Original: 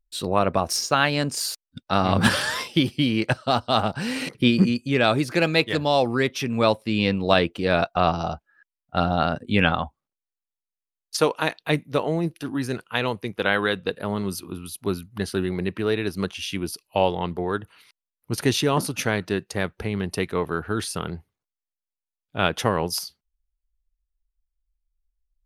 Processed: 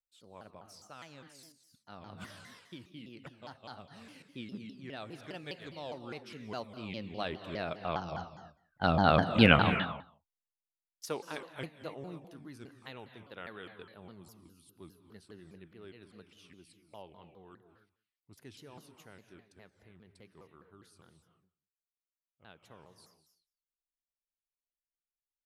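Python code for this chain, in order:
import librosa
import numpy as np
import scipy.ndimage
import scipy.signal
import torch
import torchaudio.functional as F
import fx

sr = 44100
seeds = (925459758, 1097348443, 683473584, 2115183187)

y = fx.doppler_pass(x, sr, speed_mps=5, closest_m=1.3, pass_at_s=9.31)
y = y + 10.0 ** (-22.0 / 20.0) * np.pad(y, (int(178 * sr / 1000.0), 0))[:len(y)]
y = fx.rev_gated(y, sr, seeds[0], gate_ms=320, shape='rising', drr_db=9.0)
y = fx.vibrato_shape(y, sr, shape='saw_down', rate_hz=4.9, depth_cents=250.0)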